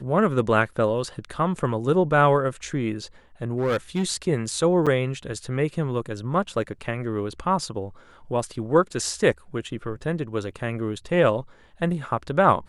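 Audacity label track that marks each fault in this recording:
3.570000	4.040000	clipped -19 dBFS
4.860000	4.870000	gap 6.6 ms

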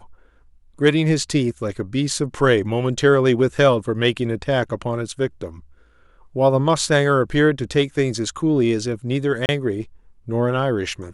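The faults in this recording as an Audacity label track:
9.460000	9.490000	gap 29 ms

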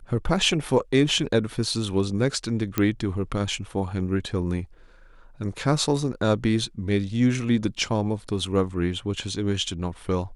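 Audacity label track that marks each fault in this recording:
2.780000	2.780000	pop -8 dBFS

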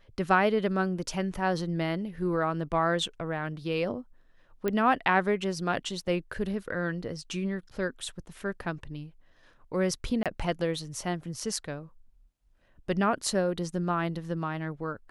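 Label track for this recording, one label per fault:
4.680000	4.680000	pop -16 dBFS
10.230000	10.260000	gap 27 ms

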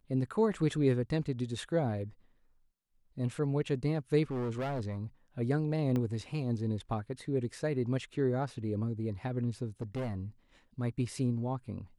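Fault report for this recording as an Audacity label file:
4.310000	4.980000	clipped -31.5 dBFS
5.960000	5.960000	pop -22 dBFS
9.810000	10.170000	clipped -32 dBFS

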